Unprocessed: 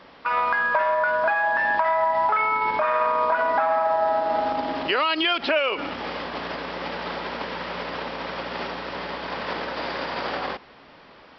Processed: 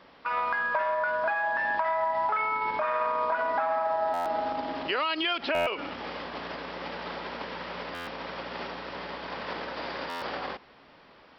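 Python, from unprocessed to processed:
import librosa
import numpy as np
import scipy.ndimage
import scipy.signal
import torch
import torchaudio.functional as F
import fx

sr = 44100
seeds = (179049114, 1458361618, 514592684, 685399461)

y = fx.buffer_glitch(x, sr, at_s=(4.13, 5.54, 7.94, 10.09), block=512, repeats=10)
y = y * librosa.db_to_amplitude(-6.0)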